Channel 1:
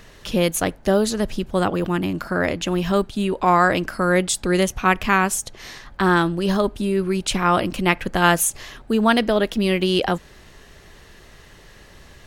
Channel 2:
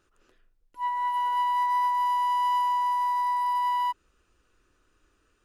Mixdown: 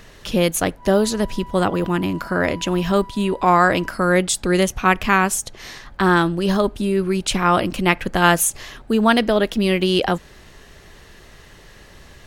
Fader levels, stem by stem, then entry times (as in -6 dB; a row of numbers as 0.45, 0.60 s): +1.5, -15.0 dB; 0.00, 0.00 s